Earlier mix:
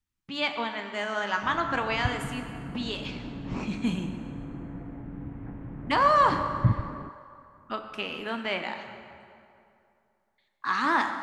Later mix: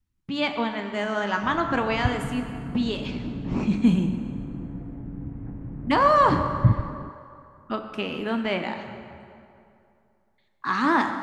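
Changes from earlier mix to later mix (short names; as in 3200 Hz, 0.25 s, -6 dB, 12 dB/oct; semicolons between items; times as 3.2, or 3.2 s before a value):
background -6.5 dB; master: add low shelf 500 Hz +11.5 dB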